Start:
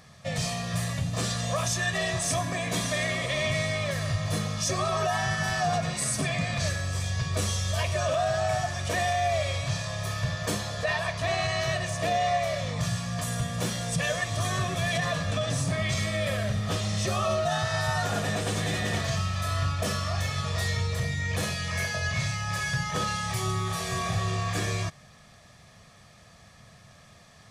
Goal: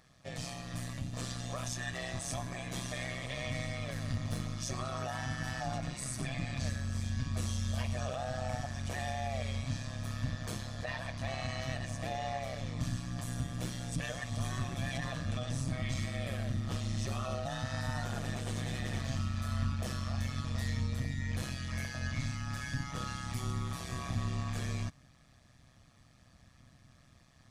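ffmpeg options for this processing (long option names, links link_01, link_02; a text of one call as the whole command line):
ffmpeg -i in.wav -filter_complex "[0:a]asettb=1/sr,asplit=3[link_01][link_02][link_03];[link_01]atrim=end=3.864[link_04];[link_02]atrim=start=3.86:end=4.43,asetpts=PTS-STARTPTS,afade=type=in:duration=0.004:curve=qsin,afade=type=out:start_time=0.566:duration=0.004:curve=qsin,aeval=exprs='0.133*(cos(1*acos(clip(val(0)/0.133,-1,1)))-cos(1*PI/2))+0.0188*(cos(4*acos(clip(val(0)/0.133,-1,1)))-cos(4*PI/2))+0.0119*(cos(6*acos(clip(val(0)/0.133,-1,1)))-cos(6*PI/2))':channel_layout=same[link_05];[link_03]atrim=start=4.426[link_06];[link_04][link_05]acrossfade=duration=0.004:curve1=hsin:curve2=qsin[link_07];[link_07][link_06]acrossfade=duration=0.004:curve1=qsin:curve2=hsin,asubboost=boost=2:cutoff=200,tremolo=f=130:d=0.788,volume=-8dB" out.wav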